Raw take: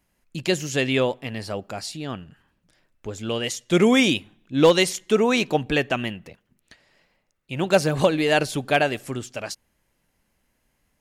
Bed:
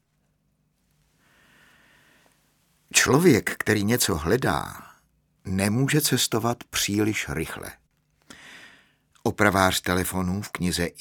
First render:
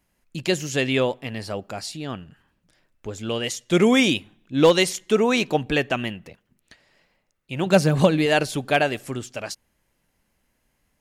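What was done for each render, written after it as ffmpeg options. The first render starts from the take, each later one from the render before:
-filter_complex "[0:a]asettb=1/sr,asplit=3[s0][s1][s2];[s0]atrim=end=7.664[s3];[s1]atrim=start=7.66:end=8.26,asetpts=PTS-STARTPTS,afade=t=in:d=0.004:c=qsin,afade=t=out:st=0.596:d=0.004:c=qsin,equalizer=f=180:w=1.5:g=7.5[s4];[s2]atrim=start=8.256[s5];[s3][s4]acrossfade=d=0.004:c1=hsin:c2=qsin[s6];[s6][s5]acrossfade=d=0.004:c1=qsin:c2=hsin"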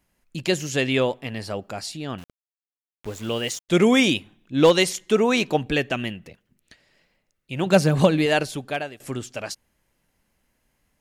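-filter_complex "[0:a]asettb=1/sr,asplit=3[s0][s1][s2];[s0]atrim=end=2.184[s3];[s1]atrim=start=2.18:end=3.69,asetpts=PTS-STARTPTS,afade=t=in:d=0.004:c=qsin,afade=t=out:st=1.506:d=0.004:c=qsin,aeval=exprs='val(0)*gte(abs(val(0)),0.0119)':c=same[s4];[s2]atrim=start=3.686[s5];[s3][s4]acrossfade=d=0.004:c1=hsin:c2=qsin[s6];[s6][s5]acrossfade=d=0.004:c1=qsin:c2=hsin,asettb=1/sr,asplit=3[s7][s8][s9];[s7]atrim=end=5.674[s10];[s8]atrim=start=5.67:end=7.58,asetpts=PTS-STARTPTS,afade=t=in:d=0.004:c=qsin,afade=t=out:st=1.906:d=0.004:c=qsin,equalizer=f=950:w=1.1:g=-4.5[s11];[s9]atrim=start=7.576[s12];[s10][s11]acrossfade=d=0.004:c1=hsin:c2=qsin[s13];[s13][s12]acrossfade=d=0.004:c1=qsin:c2=hsin,asplit=2[s14][s15];[s14]atrim=end=9,asetpts=PTS-STARTPTS,afade=t=out:st=8.24:d=0.76:silence=0.125893[s16];[s15]atrim=start=9,asetpts=PTS-STARTPTS,afade=t=in:d=0.004:c=hsin:silence=0.125893[s17];[s16][s17]concat=n=2:v=0:a=1"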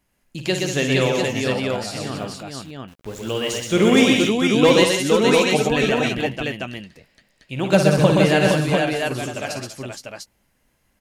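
-filter_complex "[0:a]asplit=2[s0][s1];[s1]adelay=15,volume=0.224[s2];[s0][s2]amix=inputs=2:normalize=0,aecho=1:1:54|124|190|274|467|697:0.398|0.668|0.376|0.178|0.596|0.631"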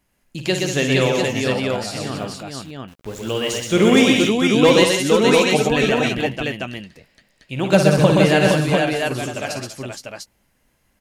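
-af "volume=1.19,alimiter=limit=0.794:level=0:latency=1"

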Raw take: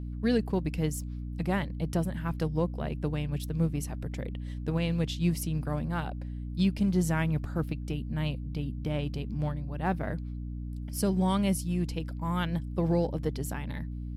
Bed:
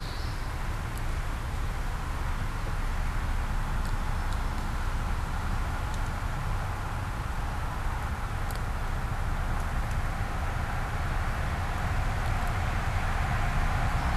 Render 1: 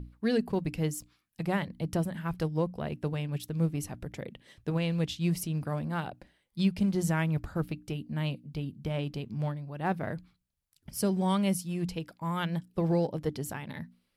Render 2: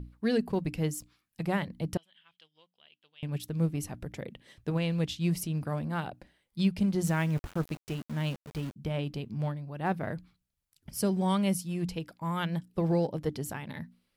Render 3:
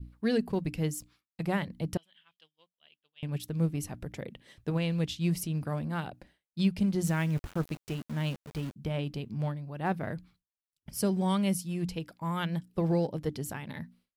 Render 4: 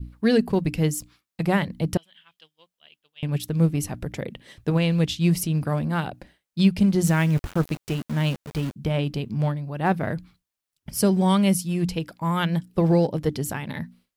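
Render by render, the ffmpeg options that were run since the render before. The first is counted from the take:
-af "bandreject=f=60:t=h:w=6,bandreject=f=120:t=h:w=6,bandreject=f=180:t=h:w=6,bandreject=f=240:t=h:w=6,bandreject=f=300:t=h:w=6"
-filter_complex "[0:a]asettb=1/sr,asplit=3[s0][s1][s2];[s0]atrim=end=1.974[s3];[s1]atrim=start=1.97:end=3.23,asetpts=PTS-STARTPTS,afade=t=in:d=0.004:c=qsin,afade=t=out:st=1.256:d=0.004:c=qsin,bandpass=f=3200:t=q:w=8.7[s4];[s2]atrim=start=3.226[s5];[s3][s4]acrossfade=d=0.004:c1=hsin:c2=qsin[s6];[s6][s5]acrossfade=d=0.004:c1=qsin:c2=hsin,asettb=1/sr,asplit=3[s7][s8][s9];[s7]atrim=end=7.044[s10];[s8]atrim=start=7.04:end=8.76,asetpts=PTS-STARTPTS,afade=t=in:d=0.004:c=qsin,afade=t=out:st=1.716:d=0.004:c=qsin,aeval=exprs='val(0)*gte(abs(val(0)),0.00891)':c=same[s11];[s9]atrim=start=8.756[s12];[s10][s11]acrossfade=d=0.004:c1=hsin:c2=qsin[s13];[s13][s12]acrossfade=d=0.004:c1=qsin:c2=hsin"
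-af "agate=range=0.0224:threshold=0.00141:ratio=3:detection=peak,adynamicequalizer=threshold=0.00794:dfrequency=810:dqfactor=0.71:tfrequency=810:tqfactor=0.71:attack=5:release=100:ratio=0.375:range=2:mode=cutabove:tftype=bell"
-af "volume=2.66"

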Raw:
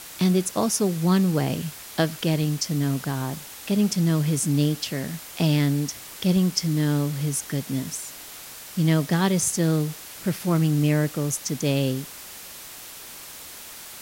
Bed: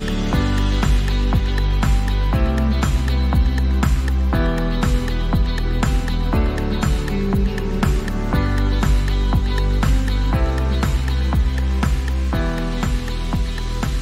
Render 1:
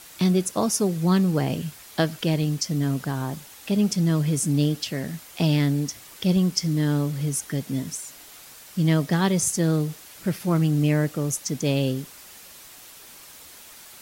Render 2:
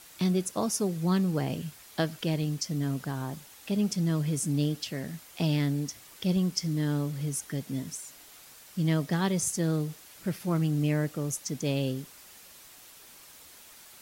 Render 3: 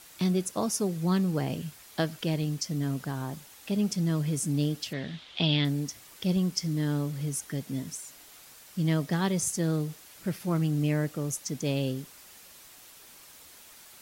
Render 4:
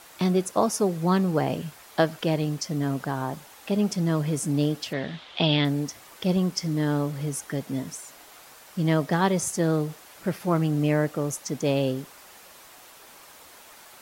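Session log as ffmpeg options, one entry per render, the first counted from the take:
-af "afftdn=nr=6:nf=-41"
-af "volume=0.501"
-filter_complex "[0:a]asettb=1/sr,asplit=3[s0][s1][s2];[s0]atrim=end=4.934[s3];[s1]atrim=start=4.93:end=5.65,asetpts=PTS-STARTPTS,afade=t=in:d=0.004:c=qsin,afade=t=out:st=0.716:d=0.004:c=qsin,lowpass=f=3500:t=q:w=4.7[s4];[s2]atrim=start=5.646[s5];[s3][s4]acrossfade=d=0.004:c1=hsin:c2=qsin[s6];[s6][s5]acrossfade=d=0.004:c1=qsin:c2=hsin"
-af "equalizer=f=800:w=0.45:g=10"

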